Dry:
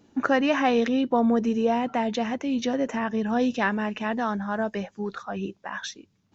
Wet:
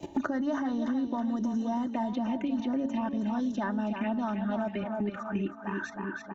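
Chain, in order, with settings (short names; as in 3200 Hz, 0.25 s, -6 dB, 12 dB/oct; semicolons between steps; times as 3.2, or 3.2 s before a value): envelope phaser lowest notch 230 Hz, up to 2500 Hz, full sweep at -22 dBFS; thirty-one-band EQ 160 Hz +10 dB, 500 Hz -7 dB, 5000 Hz -6 dB; gate with hold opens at -59 dBFS; high shelf 2700 Hz -5.5 dB; level quantiser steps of 16 dB; comb 3.3 ms, depth 67%; de-hum 278.1 Hz, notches 8; on a send: tape echo 0.32 s, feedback 43%, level -8 dB, low-pass 4400 Hz; on the sum: three-band squash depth 100%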